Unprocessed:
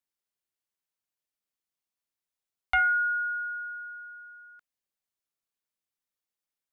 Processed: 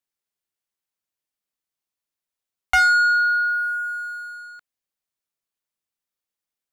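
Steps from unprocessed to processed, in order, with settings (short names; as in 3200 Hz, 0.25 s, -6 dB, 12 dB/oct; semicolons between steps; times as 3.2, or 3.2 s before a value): sample leveller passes 2; gain +5.5 dB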